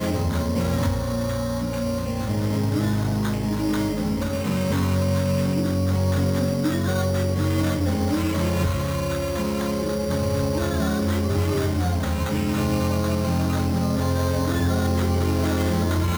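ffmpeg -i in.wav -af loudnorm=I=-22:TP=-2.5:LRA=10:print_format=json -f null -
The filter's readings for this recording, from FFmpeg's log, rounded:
"input_i" : "-23.3",
"input_tp" : "-11.9",
"input_lra" : "1.4",
"input_thresh" : "-33.3",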